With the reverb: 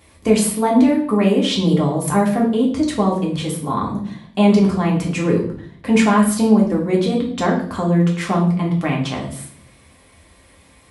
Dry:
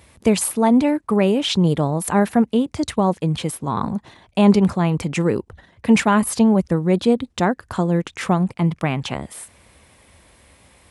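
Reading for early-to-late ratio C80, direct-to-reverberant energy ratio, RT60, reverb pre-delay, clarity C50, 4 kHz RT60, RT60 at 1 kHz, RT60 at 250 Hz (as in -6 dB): 11.0 dB, -2.5 dB, 0.55 s, 3 ms, 7.0 dB, 0.55 s, 0.50 s, 0.95 s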